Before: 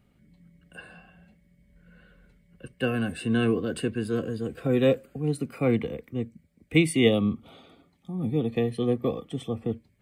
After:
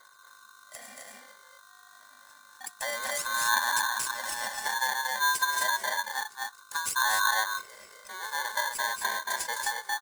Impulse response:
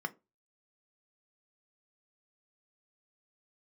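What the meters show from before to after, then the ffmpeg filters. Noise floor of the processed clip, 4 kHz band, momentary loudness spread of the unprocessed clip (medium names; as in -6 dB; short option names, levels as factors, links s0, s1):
-55 dBFS, +5.0 dB, 12 LU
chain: -filter_complex "[0:a]acompressor=threshold=0.0447:ratio=6,aphaser=in_gain=1:out_gain=1:delay=3.6:decay=0.75:speed=0.28:type=triangular,afftfilt=real='re*(1-between(b*sr/4096,1100,5700))':imag='im*(1-between(b*sr/4096,1100,5700))':win_size=4096:overlap=0.75,aeval=exprs='val(0)+0.00562*(sin(2*PI*50*n/s)+sin(2*PI*2*50*n/s)/2+sin(2*PI*3*50*n/s)/3+sin(2*PI*4*50*n/s)/4+sin(2*PI*5*50*n/s)/5)':c=same,highpass=270,equalizer=f=290:t=q:w=4:g=3,equalizer=f=510:t=q:w=4:g=-4,equalizer=f=760:t=q:w=4:g=5,equalizer=f=1100:t=q:w=4:g=-4,equalizer=f=3100:t=q:w=4:g=-8,equalizer=f=6700:t=q:w=4:g=7,lowpass=f=8000:w=0.5412,lowpass=f=8000:w=1.3066,asplit=2[s0][s1];[s1]aecho=0:1:227.4|259.5:0.562|0.631[s2];[s0][s2]amix=inputs=2:normalize=0,crystalizer=i=8:c=0,acrossover=split=360[s3][s4];[s4]acompressor=threshold=0.0316:ratio=10[s5];[s3][s5]amix=inputs=2:normalize=0,aeval=exprs='val(0)*sgn(sin(2*PI*1300*n/s))':c=same"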